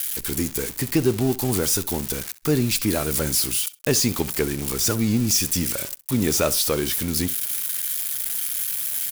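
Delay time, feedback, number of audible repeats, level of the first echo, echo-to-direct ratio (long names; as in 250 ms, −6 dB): 65 ms, 17%, 2, −18.5 dB, −18.5 dB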